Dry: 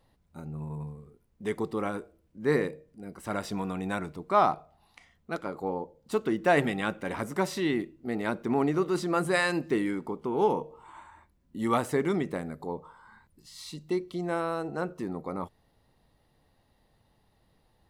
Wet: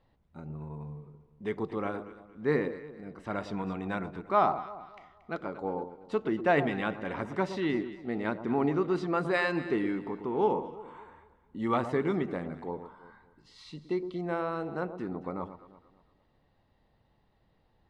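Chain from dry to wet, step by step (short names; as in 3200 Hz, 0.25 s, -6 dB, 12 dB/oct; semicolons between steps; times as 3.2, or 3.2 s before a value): LPF 3500 Hz 12 dB/oct; echo with dull and thin repeats by turns 0.115 s, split 1100 Hz, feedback 58%, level -10 dB; gain -2 dB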